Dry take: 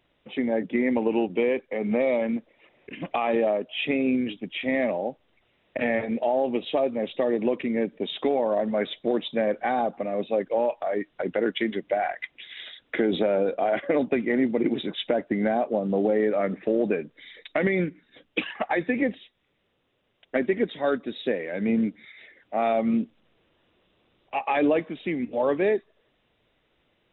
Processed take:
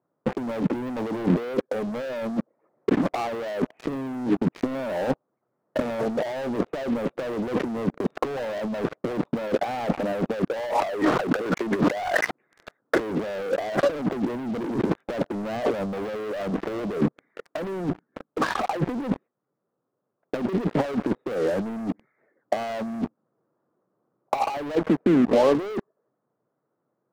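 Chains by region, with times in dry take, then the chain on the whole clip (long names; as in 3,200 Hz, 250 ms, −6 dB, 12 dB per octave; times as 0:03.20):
0:10.57–0:12.31: spectral tilt +3 dB per octave + envelope flattener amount 70%
0:24.75–0:25.55: low-pass filter 1,900 Hz + downward compressor 8 to 1, threshold −37 dBFS
whole clip: elliptic band-pass filter 130–1,300 Hz, stop band 40 dB; leveller curve on the samples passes 5; compressor whose output falls as the input rises −21 dBFS, ratio −0.5; level −2.5 dB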